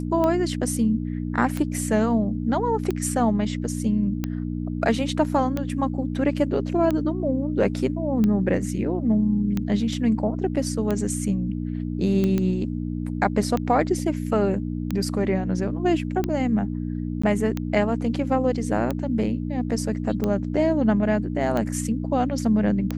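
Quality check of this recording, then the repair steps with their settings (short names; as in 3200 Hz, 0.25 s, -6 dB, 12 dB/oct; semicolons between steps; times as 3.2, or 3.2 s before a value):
hum 60 Hz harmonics 5 -28 dBFS
tick 45 rpm -13 dBFS
12.38 pop -13 dBFS
17.22–17.23 gap 15 ms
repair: de-click; de-hum 60 Hz, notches 5; interpolate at 17.22, 15 ms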